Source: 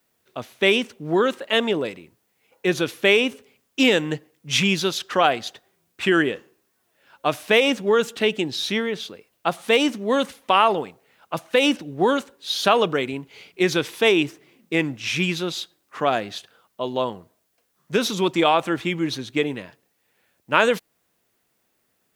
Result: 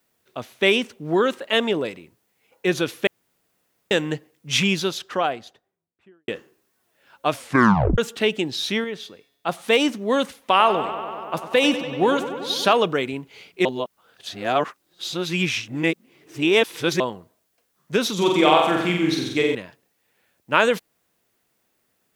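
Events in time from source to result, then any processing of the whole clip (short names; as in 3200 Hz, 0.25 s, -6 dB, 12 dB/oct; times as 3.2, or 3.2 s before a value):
3.07–3.91 room tone
4.54–6.28 studio fade out
7.32 tape stop 0.66 s
8.84–9.49 resonator 140 Hz, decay 1 s, mix 40%
10.37–12.73 darkening echo 96 ms, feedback 83%, low-pass 4900 Hz, level -12 dB
13.65–17 reverse
18.14–19.55 flutter echo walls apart 7.8 m, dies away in 0.87 s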